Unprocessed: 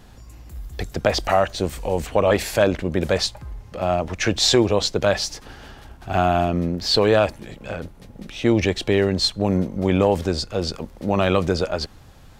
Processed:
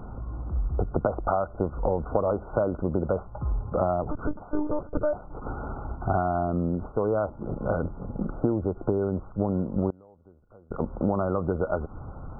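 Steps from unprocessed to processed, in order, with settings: compressor 12:1, threshold -29 dBFS, peak gain reduction 18 dB; 4.03–5.22 monotone LPC vocoder at 8 kHz 300 Hz; 9.9–10.71 flipped gate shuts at -32 dBFS, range -27 dB; brick-wall FIR low-pass 1500 Hz; gain +8 dB

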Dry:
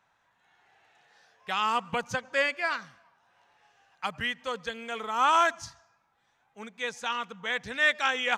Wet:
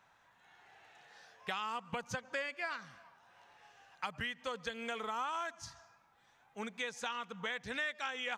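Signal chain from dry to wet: compressor 6:1, threshold -39 dBFS, peak gain reduction 19.5 dB; gain +2.5 dB

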